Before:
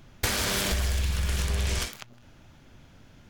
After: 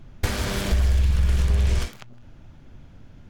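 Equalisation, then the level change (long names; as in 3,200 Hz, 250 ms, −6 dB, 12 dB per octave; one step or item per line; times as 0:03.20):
spectral tilt −2 dB per octave
0.0 dB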